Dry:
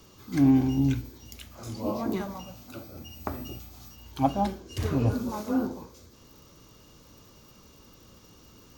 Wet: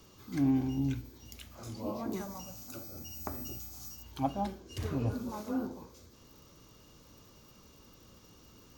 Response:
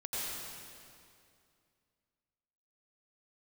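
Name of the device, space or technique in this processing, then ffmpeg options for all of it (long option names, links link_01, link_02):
parallel compression: -filter_complex "[0:a]asplit=2[link_01][link_02];[link_02]acompressor=threshold=-39dB:ratio=6,volume=-3dB[link_03];[link_01][link_03]amix=inputs=2:normalize=0,asettb=1/sr,asplit=3[link_04][link_05][link_06];[link_04]atrim=end=2.134[link_07];[link_05]atrim=start=2.13:end=4.03,asetpts=PTS-STARTPTS,afade=type=in:duration=0.004:curve=qsin,afade=type=out:start_time=1.896:duration=0.004:curve=qsin,highshelf=frequency=4700:width_type=q:width=1.5:gain=8[link_08];[link_06]atrim=start=4.026[link_09];[link_07][link_08]acrossfade=duration=0.004:curve1=hsin:curve2=qsin[link_10];[link_10][link_09]acrossfade=duration=0.004:curve1=qsin:curve2=hsin,volume=-8.5dB"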